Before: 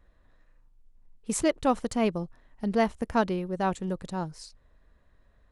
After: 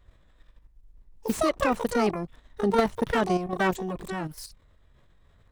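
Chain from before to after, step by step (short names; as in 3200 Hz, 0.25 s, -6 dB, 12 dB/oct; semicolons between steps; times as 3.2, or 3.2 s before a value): harmoniser +12 st -2 dB; level quantiser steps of 9 dB; slew limiter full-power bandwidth 87 Hz; gain +5 dB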